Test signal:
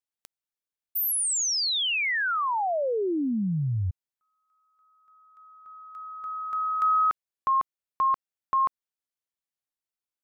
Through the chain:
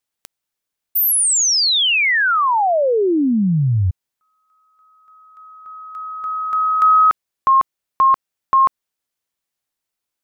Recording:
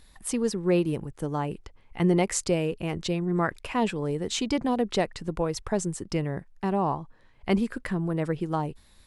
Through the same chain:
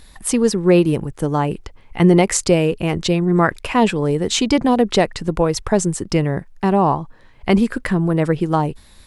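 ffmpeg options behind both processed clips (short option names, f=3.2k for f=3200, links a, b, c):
-af "alimiter=level_in=12dB:limit=-1dB:release=50:level=0:latency=1,volume=-1.5dB"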